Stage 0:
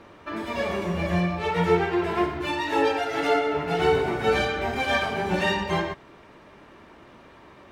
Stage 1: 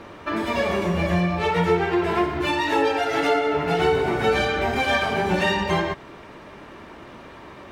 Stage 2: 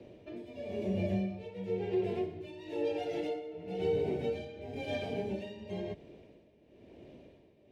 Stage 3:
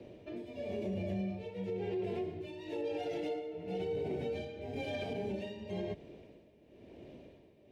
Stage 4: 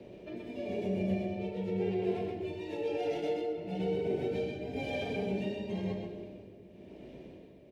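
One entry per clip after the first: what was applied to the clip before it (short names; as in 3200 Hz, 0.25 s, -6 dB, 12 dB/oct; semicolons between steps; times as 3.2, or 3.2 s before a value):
compressor 2:1, threshold -29 dBFS, peak gain reduction 8 dB; gain +7.5 dB
EQ curve 570 Hz 0 dB, 1200 Hz -27 dB, 2500 Hz -7 dB, 9000 Hz -12 dB; frequency shift +18 Hz; tremolo 0.99 Hz, depth 75%; gain -8.5 dB
limiter -30.5 dBFS, peak gain reduction 9 dB; gain +1 dB
echo 0.127 s -4 dB; on a send at -6 dB: reverb RT60 2.2 s, pre-delay 5 ms; on the sum: gain +1 dB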